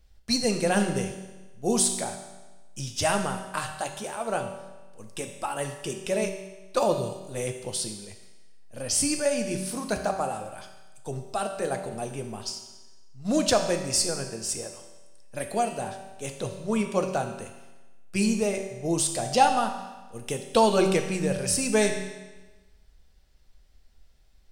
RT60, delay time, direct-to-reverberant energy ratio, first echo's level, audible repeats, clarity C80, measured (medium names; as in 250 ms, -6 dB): 1.2 s, no echo, 4.0 dB, no echo, no echo, 9.0 dB